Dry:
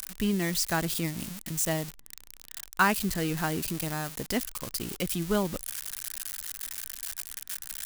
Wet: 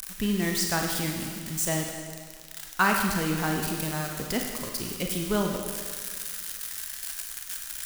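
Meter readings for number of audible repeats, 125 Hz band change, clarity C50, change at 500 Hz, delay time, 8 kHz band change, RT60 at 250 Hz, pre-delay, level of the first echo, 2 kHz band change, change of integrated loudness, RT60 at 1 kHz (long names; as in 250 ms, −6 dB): no echo audible, +1.5 dB, 3.0 dB, +1.5 dB, no echo audible, +2.0 dB, 1.8 s, 32 ms, no echo audible, +2.5 dB, +2.0 dB, 1.8 s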